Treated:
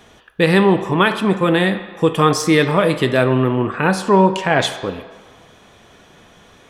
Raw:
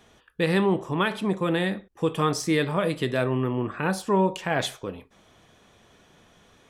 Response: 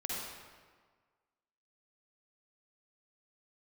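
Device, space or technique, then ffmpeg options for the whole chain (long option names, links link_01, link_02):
filtered reverb send: -filter_complex "[0:a]asettb=1/sr,asplit=3[link_01][link_02][link_03];[link_01]atrim=end=3.904[link_04];[link_02]atrim=start=3.9:end=4.83,asetpts=PTS-STARTPTS,afade=type=in:duration=0.004:curve=qsin,afade=type=out:start_time=0.926:duration=0.004:curve=qsin,lowpass=10000[link_05];[link_03]atrim=start=4.826[link_06];[link_04][link_05]acrossfade=duration=0.004:curve1=hsin:curve2=qsin[link_07];[link_07][link_06]acrossfade=duration=0.004:curve1=qsin:curve2=hsin,asplit=2[link_08][link_09];[link_09]highpass=frequency=480:poles=1,lowpass=4500[link_10];[1:a]atrim=start_sample=2205[link_11];[link_10][link_11]afir=irnorm=-1:irlink=0,volume=-11dB[link_12];[link_08][link_12]amix=inputs=2:normalize=0,volume=8.5dB"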